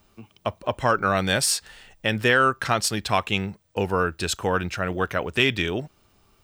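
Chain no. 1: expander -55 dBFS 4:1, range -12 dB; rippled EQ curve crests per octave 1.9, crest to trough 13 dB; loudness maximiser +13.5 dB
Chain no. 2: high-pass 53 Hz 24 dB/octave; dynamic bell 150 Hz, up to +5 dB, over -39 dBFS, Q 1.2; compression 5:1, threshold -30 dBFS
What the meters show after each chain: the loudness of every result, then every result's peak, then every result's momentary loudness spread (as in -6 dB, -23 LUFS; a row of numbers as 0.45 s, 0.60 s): -12.5 LUFS, -34.0 LUFS; -1.0 dBFS, -13.5 dBFS; 9 LU, 6 LU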